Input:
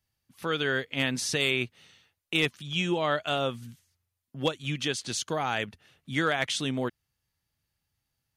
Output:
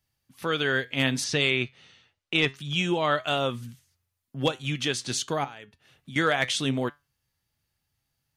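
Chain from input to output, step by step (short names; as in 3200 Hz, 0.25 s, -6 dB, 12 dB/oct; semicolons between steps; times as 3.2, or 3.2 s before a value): 1.24–2.55 LPF 5700 Hz 12 dB/oct; 5.44–6.16 compressor 16:1, threshold -42 dBFS, peak gain reduction 17.5 dB; flange 0.72 Hz, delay 6.8 ms, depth 1.6 ms, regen +81%; gain +7 dB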